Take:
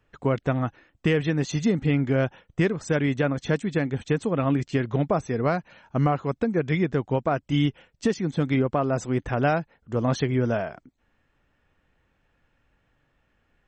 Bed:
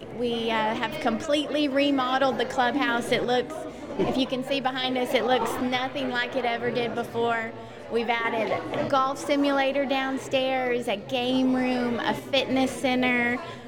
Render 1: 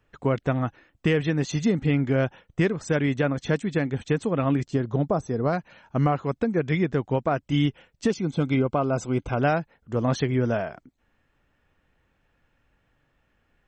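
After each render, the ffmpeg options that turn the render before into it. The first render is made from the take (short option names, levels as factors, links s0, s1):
-filter_complex "[0:a]asettb=1/sr,asplit=3[s0][s1][s2];[s0]atrim=end=4.654[s3];[s1]atrim=start=4.65:end=5.53,asetpts=PTS-STARTPTS,afade=t=in:d=0.004:c=qsin,afade=t=out:st=0.876:d=0.004:c=qsin,equalizer=f=2300:t=o:w=1.1:g=-12[s4];[s2]atrim=start=5.526[s5];[s3][s4]acrossfade=d=0.004:c1=hsin:c2=qsin[s6];[s6][s5]acrossfade=d=0.004:c1=qsin:c2=hsin,asettb=1/sr,asplit=3[s7][s8][s9];[s7]atrim=end=8.104[s10];[s8]atrim=start=8.1:end=9.39,asetpts=PTS-STARTPTS,afade=t=in:d=0.004:c=qsin,afade=t=out:st=1.286:d=0.004:c=qsin,asuperstop=centerf=1800:order=12:qfactor=4.8[s11];[s9]atrim=start=9.386[s12];[s10][s11]acrossfade=d=0.004:c1=hsin:c2=qsin[s13];[s13][s12]acrossfade=d=0.004:c1=qsin:c2=hsin"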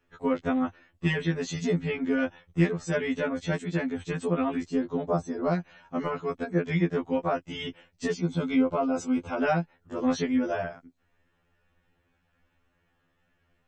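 -af "afftfilt=real='re*2*eq(mod(b,4),0)':imag='im*2*eq(mod(b,4),0)':win_size=2048:overlap=0.75"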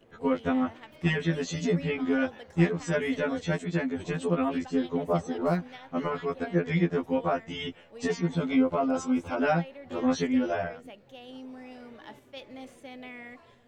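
-filter_complex "[1:a]volume=0.0944[s0];[0:a][s0]amix=inputs=2:normalize=0"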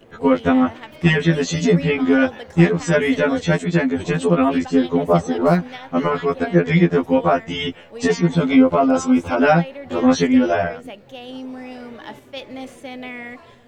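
-af "volume=3.55,alimiter=limit=0.708:level=0:latency=1"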